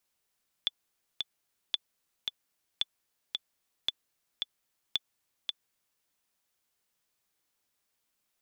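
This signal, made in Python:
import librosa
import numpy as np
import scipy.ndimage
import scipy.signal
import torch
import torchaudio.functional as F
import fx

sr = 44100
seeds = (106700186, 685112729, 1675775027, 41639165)

y = fx.click_track(sr, bpm=112, beats=2, bars=5, hz=3470.0, accent_db=4.0, level_db=-14.5)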